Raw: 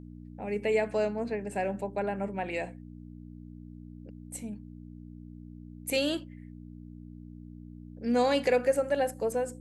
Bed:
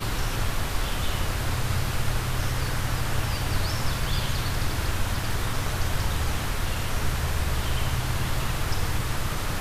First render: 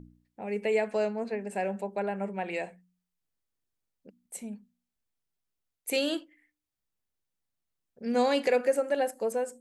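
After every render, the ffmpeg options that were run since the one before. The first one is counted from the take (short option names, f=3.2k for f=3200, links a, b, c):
-af "bandreject=f=60:t=h:w=4,bandreject=f=120:t=h:w=4,bandreject=f=180:t=h:w=4,bandreject=f=240:t=h:w=4,bandreject=f=300:t=h:w=4"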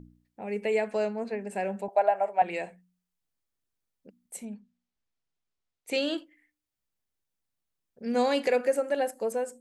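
-filter_complex "[0:a]asettb=1/sr,asplit=3[a][b][c];[a]atrim=end=1.884[d];[b]atrim=start=1.88:end=2.42,asetpts=PTS-STARTPTS,afade=t=in:d=0.004:c=qsin,afade=t=out:st=0.536:d=0.004:c=qsin,highpass=f=690:t=q:w=8.5[e];[c]atrim=start=2.416[f];[d][e]acrossfade=d=0.004:c1=hsin:c2=qsin[g];[g][f]acrossfade=d=0.004:c1=qsin:c2=hsin,asettb=1/sr,asplit=3[h][i][j];[h]atrim=end=4.454[k];[i]atrim=start=4.45:end=6.18,asetpts=PTS-STARTPTS,afade=t=in:d=0.004:c=qsin,afade=t=out:st=1.726:d=0.004:c=qsin,lowpass=6.1k[l];[j]atrim=start=6.176[m];[k][l]acrossfade=d=0.004:c1=hsin:c2=qsin[n];[n][m]acrossfade=d=0.004:c1=qsin:c2=hsin"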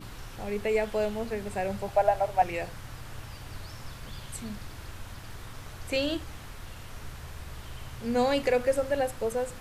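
-filter_complex "[1:a]volume=-15.5dB[a];[0:a][a]amix=inputs=2:normalize=0"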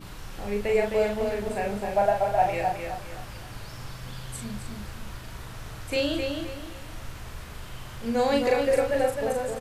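-filter_complex "[0:a]asplit=2[a][b];[b]adelay=39,volume=-3.5dB[c];[a][c]amix=inputs=2:normalize=0,asplit=2[d][e];[e]adelay=261,lowpass=f=4.9k:p=1,volume=-4.5dB,asplit=2[f][g];[g]adelay=261,lowpass=f=4.9k:p=1,volume=0.34,asplit=2[h][i];[i]adelay=261,lowpass=f=4.9k:p=1,volume=0.34,asplit=2[j][k];[k]adelay=261,lowpass=f=4.9k:p=1,volume=0.34[l];[d][f][h][j][l]amix=inputs=5:normalize=0"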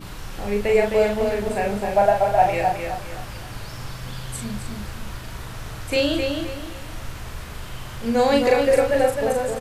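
-af "volume=5.5dB"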